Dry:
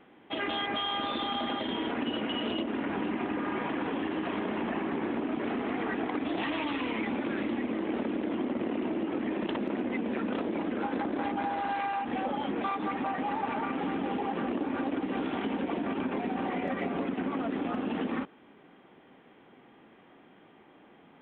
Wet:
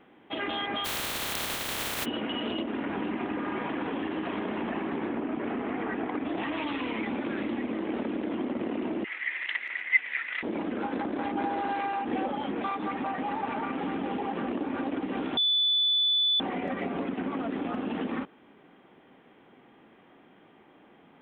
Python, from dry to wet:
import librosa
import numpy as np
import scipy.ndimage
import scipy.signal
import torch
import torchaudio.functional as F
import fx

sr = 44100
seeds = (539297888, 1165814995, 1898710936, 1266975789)

y = fx.spec_flatten(x, sr, power=0.14, at=(0.84, 2.04), fade=0.02)
y = fx.lowpass(y, sr, hz=2800.0, slope=12, at=(5.09, 6.57))
y = fx.highpass_res(y, sr, hz=2000.0, q=10.0, at=(9.04, 10.43))
y = fx.peak_eq(y, sr, hz=370.0, db=7.0, octaves=0.77, at=(11.35, 12.26))
y = fx.edit(y, sr, fx.bleep(start_s=15.37, length_s=1.03, hz=3480.0, db=-21.5), tone=tone)